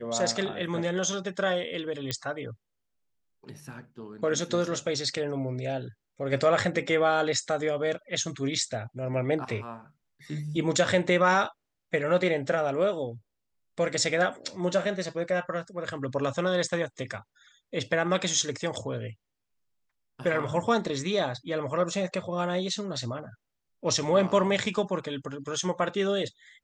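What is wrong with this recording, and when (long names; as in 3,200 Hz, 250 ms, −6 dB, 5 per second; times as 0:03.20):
0:02.11: click −14 dBFS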